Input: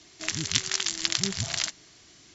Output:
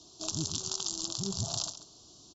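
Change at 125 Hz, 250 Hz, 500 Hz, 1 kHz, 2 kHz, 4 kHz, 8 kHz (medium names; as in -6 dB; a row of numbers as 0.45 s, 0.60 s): -2.0 dB, -2.0 dB, -2.0 dB, -4.5 dB, -24.5 dB, -8.0 dB, no reading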